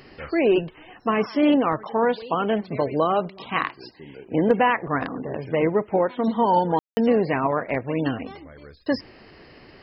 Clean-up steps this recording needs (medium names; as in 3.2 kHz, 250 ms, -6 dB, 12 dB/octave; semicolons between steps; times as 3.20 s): clip repair -8 dBFS; room tone fill 6.79–6.97 s